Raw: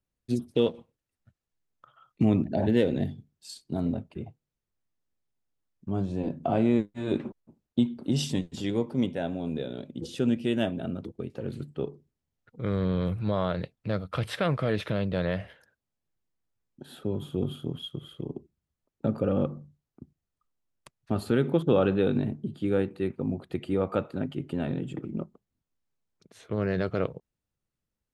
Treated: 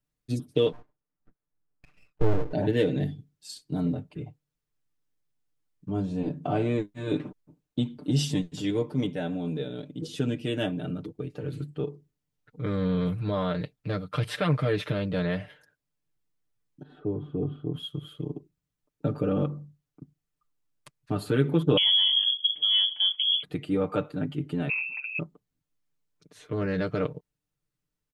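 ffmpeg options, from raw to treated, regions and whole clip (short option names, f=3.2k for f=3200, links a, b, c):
-filter_complex "[0:a]asettb=1/sr,asplit=3[a][b][c];[a]atrim=end=0.724[d];[b]atrim=start=0.72:end=2.53,asetpts=PTS-STARTPTS,afade=t=in:d=0.004:c=qsin,afade=t=out:st=1.806:d=0.004:c=qsin,lowpass=f=1.5k:w=0.5412,lowpass=f=1.5k:w=1.3066,aeval=exprs='abs(val(0))':c=same[e];[c]atrim=start=2.526[f];[d][e]acrossfade=d=0.004:c1=hsin:c2=qsin[g];[g][f]acrossfade=d=0.004:c1=qsin:c2=hsin,asettb=1/sr,asplit=3[h][i][j];[h]atrim=end=16.834[k];[i]atrim=start=16.83:end=17.74,asetpts=PTS-STARTPTS,afade=t=in:d=0.004:c=qsin,afade=t=out:st=0.906:d=0.004:c=qsin,lowpass=1.2k,aecho=1:1:2.7:0.32,atrim=end_sample=40131[l];[j]atrim=start=17.736[m];[k][l]acrossfade=d=0.004:c1=hsin:c2=qsin[n];[n][m]acrossfade=d=0.004:c1=qsin:c2=hsin,asettb=1/sr,asplit=3[o][p][q];[o]atrim=end=21.774[r];[p]atrim=start=21.77:end=23.43,asetpts=PTS-STARTPTS,afade=t=in:d=0.004:c=qsin,afade=t=out:st=1.656:d=0.004:c=qsin,lowshelf=f=400:g=11.5,acompressor=threshold=-25dB:ratio=2:attack=3.2:release=140:knee=1:detection=peak,lowpass=f=3k:t=q:w=0.5098,lowpass=f=3k:t=q:w=0.6013,lowpass=f=3k:t=q:w=0.9,lowpass=f=3k:t=q:w=2.563,afreqshift=-3500[s];[q]atrim=start=23.426[t];[r][s]acrossfade=d=0.004:c1=hsin:c2=qsin[u];[u][t]acrossfade=d=0.004:c1=qsin:c2=hsin,asettb=1/sr,asplit=3[v][w][x];[v]atrim=end=24.694[y];[w]atrim=start=24.69:end=25.19,asetpts=PTS-STARTPTS,afade=t=in:d=0.004:c=qsin,afade=t=out:st=0.496:d=0.004:c=qsin,lowpass=f=2.4k:t=q:w=0.5098,lowpass=f=2.4k:t=q:w=0.6013,lowpass=f=2.4k:t=q:w=0.9,lowpass=f=2.4k:t=q:w=2.563,afreqshift=-2800,lowshelf=f=95:g=-12[z];[x]atrim=start=25.186[aa];[y][z]acrossfade=d=0.004:c1=hsin:c2=qsin[ab];[ab][aa]acrossfade=d=0.004:c1=qsin:c2=hsin,equalizer=f=700:w=1.5:g=-3,aecho=1:1:6.7:0.86,volume=-1dB"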